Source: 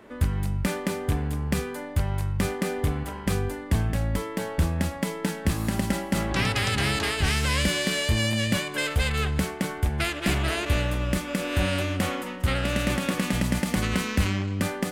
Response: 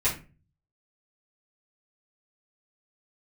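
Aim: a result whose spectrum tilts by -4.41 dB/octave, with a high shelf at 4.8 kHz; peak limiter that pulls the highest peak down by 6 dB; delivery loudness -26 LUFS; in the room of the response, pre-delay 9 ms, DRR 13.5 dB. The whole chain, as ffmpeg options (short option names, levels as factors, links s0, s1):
-filter_complex "[0:a]highshelf=f=4800:g=5.5,alimiter=limit=0.141:level=0:latency=1,asplit=2[s0][s1];[1:a]atrim=start_sample=2205,adelay=9[s2];[s1][s2]afir=irnorm=-1:irlink=0,volume=0.0631[s3];[s0][s3]amix=inputs=2:normalize=0,volume=1.19"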